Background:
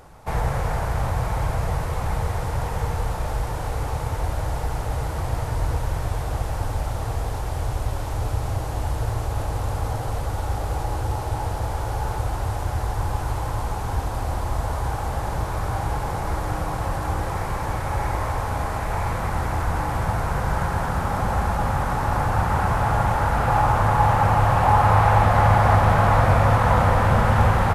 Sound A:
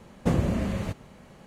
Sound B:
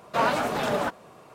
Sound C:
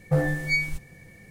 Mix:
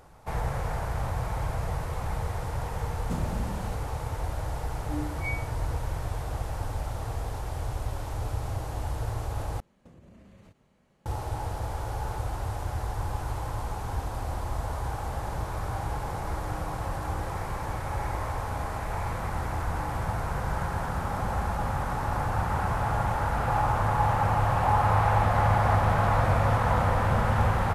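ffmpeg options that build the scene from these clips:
-filter_complex "[1:a]asplit=2[a][b];[0:a]volume=-6.5dB[c];[a]bass=f=250:g=6,treble=f=4k:g=9[d];[3:a]asplit=3[e][f][g];[e]bandpass=f=300:t=q:w=8,volume=0dB[h];[f]bandpass=f=870:t=q:w=8,volume=-6dB[i];[g]bandpass=f=2.24k:t=q:w=8,volume=-9dB[j];[h][i][j]amix=inputs=3:normalize=0[k];[b]acompressor=threshold=-33dB:ratio=6:attack=3.2:release=140:knee=1:detection=peak[l];[2:a]acompressor=threshold=-33dB:ratio=6:attack=3.2:release=140:knee=1:detection=peak[m];[c]asplit=2[n][o];[n]atrim=end=9.604[p];[l]atrim=end=1.46,asetpts=PTS-STARTPTS,volume=-16.5dB[q];[o]atrim=start=11.056[r];[d]atrim=end=1.46,asetpts=PTS-STARTPTS,volume=-13dB,afade=t=in:d=0.004:c=hsin,afade=t=out:st=1.456:d=0.004:c=hsin,adelay=2840[s];[k]atrim=end=1.3,asetpts=PTS-STARTPTS,volume=-1.5dB,afade=t=in:d=0.004:c=hsin,afade=t=out:st=1.296:d=0.004:c=hsin,adelay=4740[t];[m]atrim=end=1.34,asetpts=PTS-STARTPTS,volume=-9dB,afade=t=in:d=0.004:c=hsin,afade=t=out:st=1.336:d=0.004:c=hsin,adelay=25890[u];[p][q]acrossfade=d=0.004:c1=hsin:c2=hsin[v];[v][r]acrossfade=d=0.004:c1=hsin:c2=hsin[w];[w][s][t][u]amix=inputs=4:normalize=0"

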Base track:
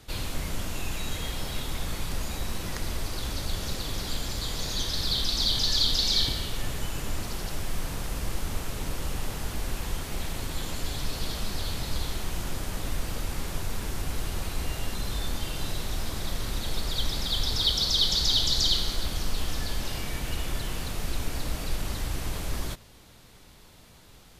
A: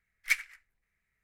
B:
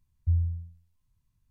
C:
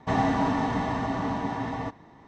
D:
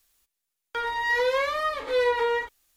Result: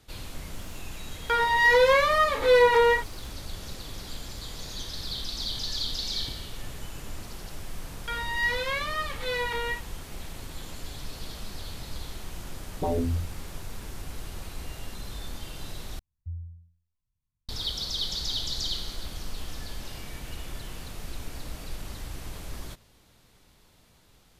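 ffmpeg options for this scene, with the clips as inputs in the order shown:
-filter_complex "[4:a]asplit=2[a][b];[2:a]asplit=2[c][d];[0:a]volume=-7dB[e];[a]acontrast=54[f];[b]equalizer=f=3.3k:w=0.37:g=14[g];[c]aeval=exprs='0.141*sin(PI/2*7.08*val(0)/0.141)':c=same[h];[e]asplit=2[i][j];[i]atrim=end=15.994[k];[d]atrim=end=1.5,asetpts=PTS-STARTPTS,volume=-12dB[l];[j]atrim=start=17.486[m];[f]atrim=end=2.76,asetpts=PTS-STARTPTS,volume=-1dB,afade=t=in:d=0.004:c=hsin,afade=t=out:st=2.756:d=0.004:c=hsin,adelay=550[n];[g]atrim=end=2.76,asetpts=PTS-STARTPTS,volume=-12.5dB,afade=t=in:d=0.004:c=hsin,afade=t=out:st=2.756:d=0.004:c=hsin,adelay=7330[o];[h]atrim=end=1.5,asetpts=PTS-STARTPTS,volume=-6.5dB,afade=t=in:d=0.004:c=hsin,afade=t=out:st=1.496:d=0.004:c=hsin,adelay=12550[p];[k][l]acrossfade=d=0.004:c1=hsin:c2=hsin[q];[q][m]acrossfade=d=0.004:c1=hsin:c2=hsin[r];[r][n][o][p]amix=inputs=4:normalize=0"

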